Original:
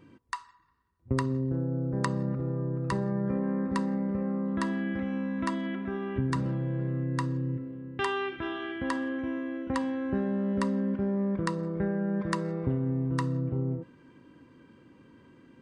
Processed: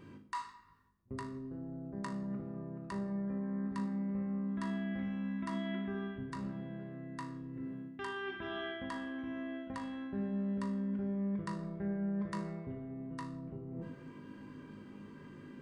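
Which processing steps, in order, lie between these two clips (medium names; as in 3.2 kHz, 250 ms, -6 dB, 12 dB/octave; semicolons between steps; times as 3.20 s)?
reverse; compression 10:1, threshold -40 dBFS, peak gain reduction 18 dB; reverse; feedback comb 51 Hz, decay 0.36 s, harmonics all, mix 80%; simulated room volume 2200 m³, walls furnished, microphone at 1.3 m; trim +8.5 dB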